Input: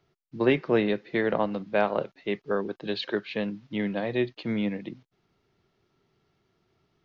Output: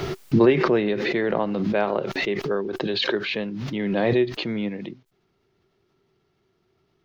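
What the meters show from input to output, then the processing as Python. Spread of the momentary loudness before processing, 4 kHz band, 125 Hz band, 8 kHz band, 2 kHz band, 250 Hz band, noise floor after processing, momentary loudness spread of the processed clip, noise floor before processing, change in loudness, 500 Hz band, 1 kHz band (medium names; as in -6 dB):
8 LU, +8.0 dB, +7.0 dB, no reading, +4.5 dB, +5.0 dB, -69 dBFS, 10 LU, -74 dBFS, +5.0 dB, +4.5 dB, +3.5 dB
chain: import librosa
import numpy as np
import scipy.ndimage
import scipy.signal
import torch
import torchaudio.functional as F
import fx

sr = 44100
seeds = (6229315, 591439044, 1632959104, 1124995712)

y = fx.peak_eq(x, sr, hz=380.0, db=6.5, octaves=0.21)
y = fx.pre_swell(y, sr, db_per_s=21.0)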